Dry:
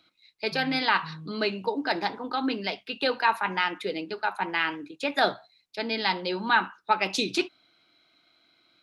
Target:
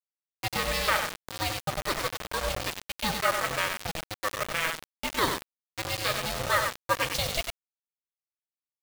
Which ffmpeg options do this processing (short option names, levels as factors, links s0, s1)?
-af "asubboost=boost=7:cutoff=120,aecho=1:1:96|192|288:0.501|0.125|0.0313,aeval=exprs='val(0)*sin(2*PI*320*n/s)':c=same,acrusher=bits=4:mix=0:aa=0.000001"